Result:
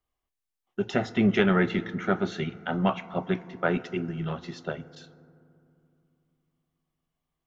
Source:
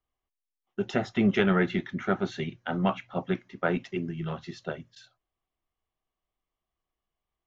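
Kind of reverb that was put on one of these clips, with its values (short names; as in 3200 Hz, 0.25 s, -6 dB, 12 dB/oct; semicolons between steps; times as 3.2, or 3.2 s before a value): FDN reverb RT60 2.6 s, low-frequency decay 1.45×, high-frequency decay 0.3×, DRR 15.5 dB; gain +1.5 dB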